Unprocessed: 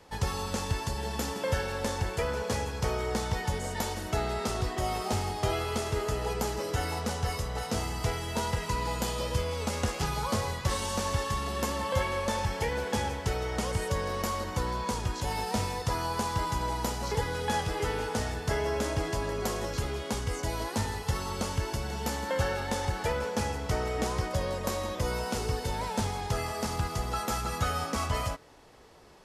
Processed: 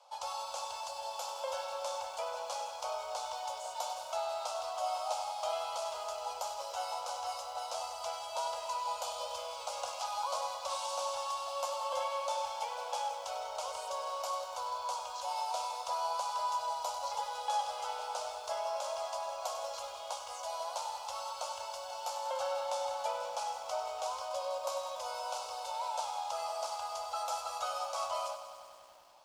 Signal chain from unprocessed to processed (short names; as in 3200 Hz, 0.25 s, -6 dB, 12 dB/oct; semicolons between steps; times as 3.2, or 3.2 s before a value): elliptic high-pass 570 Hz, stop band 40 dB; air absorption 53 m; fixed phaser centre 760 Hz, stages 4; lo-fi delay 97 ms, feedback 80%, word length 10-bit, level -11 dB